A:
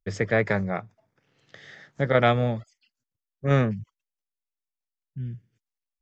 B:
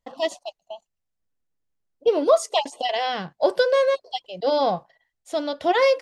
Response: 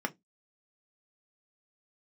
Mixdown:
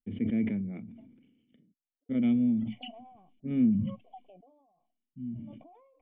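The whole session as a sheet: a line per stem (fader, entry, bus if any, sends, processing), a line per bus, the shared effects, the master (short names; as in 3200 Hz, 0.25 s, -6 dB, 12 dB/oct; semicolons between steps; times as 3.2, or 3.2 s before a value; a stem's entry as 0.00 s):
-5.5 dB, 0.00 s, muted 1.56–2.09, send -10.5 dB, small resonant body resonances 230/2900 Hz, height 7 dB, ringing for 40 ms
-1.0 dB, 0.00 s, no send, vocal tract filter a; limiter -32.5 dBFS, peak gain reduction 18 dB; low shelf 350 Hz -9 dB; auto duck -22 dB, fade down 0.55 s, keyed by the first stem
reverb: on, RT60 0.15 s, pre-delay 3 ms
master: vocal tract filter i; low shelf 130 Hz +6 dB; sustainer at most 48 dB/s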